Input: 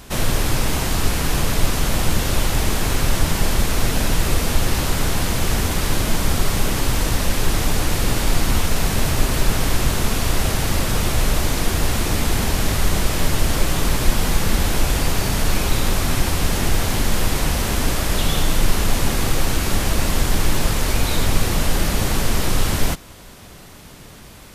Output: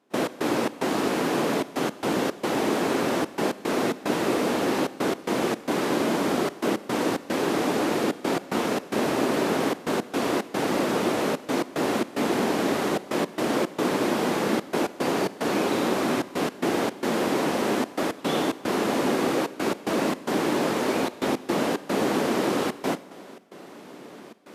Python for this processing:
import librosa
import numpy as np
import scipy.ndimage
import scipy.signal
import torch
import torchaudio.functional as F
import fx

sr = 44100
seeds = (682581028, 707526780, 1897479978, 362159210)

y = fx.step_gate(x, sr, bpm=111, pattern='.x.xx.xxxxxx', floor_db=-24.0, edge_ms=4.5)
y = scipy.signal.sosfilt(scipy.signal.butter(4, 280.0, 'highpass', fs=sr, output='sos'), y)
y = fx.tilt_eq(y, sr, slope=-4.0)
y = fx.rev_schroeder(y, sr, rt60_s=1.4, comb_ms=31, drr_db=16.5)